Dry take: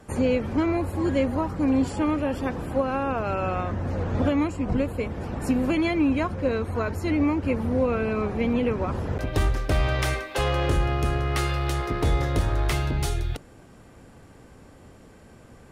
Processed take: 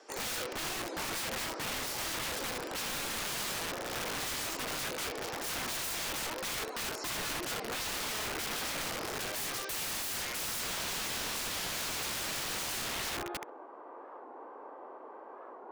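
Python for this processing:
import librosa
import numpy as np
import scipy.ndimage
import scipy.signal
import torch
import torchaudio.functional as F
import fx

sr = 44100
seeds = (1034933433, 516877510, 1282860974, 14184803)

p1 = scipy.signal.sosfilt(scipy.signal.butter(6, 330.0, 'highpass', fs=sr, output='sos'), x)
p2 = fx.high_shelf(p1, sr, hz=9200.0, db=3.0)
p3 = fx.rider(p2, sr, range_db=5, speed_s=2.0)
p4 = p3 + fx.room_flutter(p3, sr, wall_m=11.3, rt60_s=0.41, dry=0)
p5 = fx.filter_sweep_lowpass(p4, sr, from_hz=5400.0, to_hz=1000.0, start_s=10.04, end_s=10.64, q=3.7)
p6 = (np.mod(10.0 ** (29.0 / 20.0) * p5 + 1.0, 2.0) - 1.0) / 10.0 ** (29.0 / 20.0)
p7 = fx.record_warp(p6, sr, rpm=45.0, depth_cents=160.0)
y = F.gain(torch.from_numpy(p7), -2.5).numpy()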